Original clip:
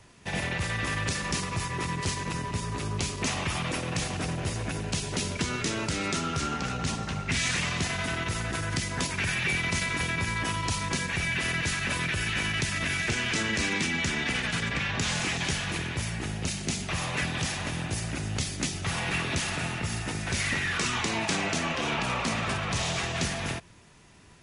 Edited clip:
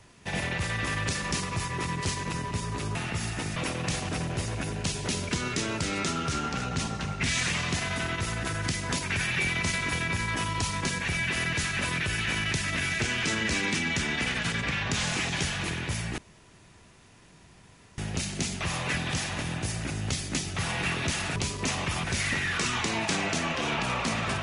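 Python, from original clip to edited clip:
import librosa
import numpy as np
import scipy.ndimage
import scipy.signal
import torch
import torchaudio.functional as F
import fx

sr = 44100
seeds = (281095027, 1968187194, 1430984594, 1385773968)

y = fx.edit(x, sr, fx.swap(start_s=2.95, length_s=0.69, other_s=19.64, other_length_s=0.61),
    fx.insert_room_tone(at_s=16.26, length_s=1.8), tone=tone)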